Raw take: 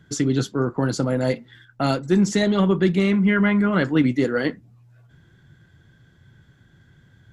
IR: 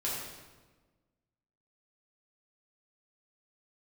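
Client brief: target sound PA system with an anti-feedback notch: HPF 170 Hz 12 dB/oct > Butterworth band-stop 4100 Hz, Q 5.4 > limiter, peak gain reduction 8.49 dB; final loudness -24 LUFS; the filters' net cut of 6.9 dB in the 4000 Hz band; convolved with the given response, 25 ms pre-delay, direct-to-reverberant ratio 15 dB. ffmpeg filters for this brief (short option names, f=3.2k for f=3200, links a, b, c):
-filter_complex "[0:a]equalizer=f=4k:t=o:g=-6.5,asplit=2[a][b];[1:a]atrim=start_sample=2205,adelay=25[c];[b][c]afir=irnorm=-1:irlink=0,volume=-20dB[d];[a][d]amix=inputs=2:normalize=0,highpass=170,asuperstop=centerf=4100:order=8:qfactor=5.4,volume=1dB,alimiter=limit=-15dB:level=0:latency=1"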